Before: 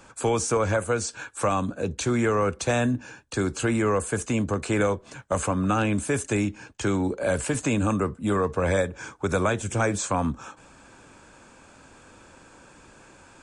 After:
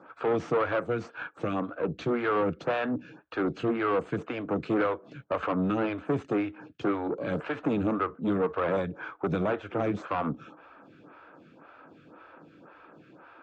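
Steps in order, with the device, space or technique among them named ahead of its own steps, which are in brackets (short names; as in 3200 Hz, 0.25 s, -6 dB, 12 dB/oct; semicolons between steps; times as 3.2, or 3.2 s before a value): vibe pedal into a guitar amplifier (photocell phaser 1.9 Hz; tube stage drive 26 dB, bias 0.55; speaker cabinet 110–3500 Hz, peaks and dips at 160 Hz +9 dB, 310 Hz +8 dB, 470 Hz +4 dB, 680 Hz +5 dB, 1300 Hz +9 dB)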